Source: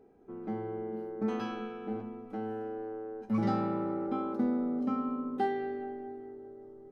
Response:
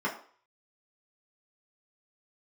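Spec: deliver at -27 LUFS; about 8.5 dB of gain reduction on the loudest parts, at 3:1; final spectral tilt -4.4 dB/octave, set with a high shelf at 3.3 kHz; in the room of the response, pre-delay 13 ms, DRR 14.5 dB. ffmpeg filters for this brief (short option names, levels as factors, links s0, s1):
-filter_complex "[0:a]highshelf=f=3300:g=7,acompressor=threshold=0.0141:ratio=3,asplit=2[s0][s1];[1:a]atrim=start_sample=2205,adelay=13[s2];[s1][s2]afir=irnorm=-1:irlink=0,volume=0.0668[s3];[s0][s3]amix=inputs=2:normalize=0,volume=4.22"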